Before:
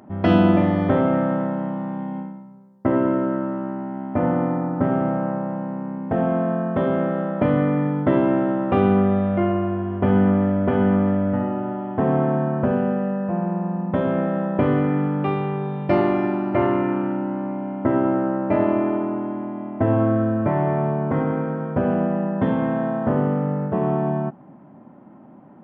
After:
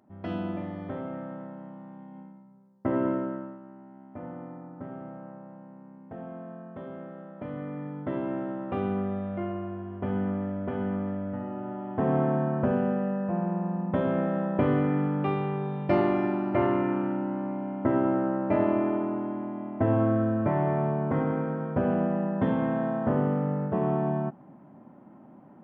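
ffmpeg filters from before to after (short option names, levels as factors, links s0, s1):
-af "volume=2.51,afade=t=in:st=2.11:d=0.96:silence=0.298538,afade=t=out:st=3.07:d=0.52:silence=0.223872,afade=t=in:st=7.36:d=1.02:silence=0.421697,afade=t=in:st=11.42:d=0.75:silence=0.446684"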